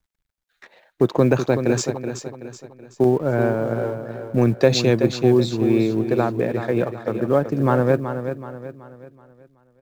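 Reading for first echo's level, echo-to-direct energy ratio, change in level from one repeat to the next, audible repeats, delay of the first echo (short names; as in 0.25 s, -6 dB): -9.0 dB, -8.0 dB, -7.5 dB, 4, 0.377 s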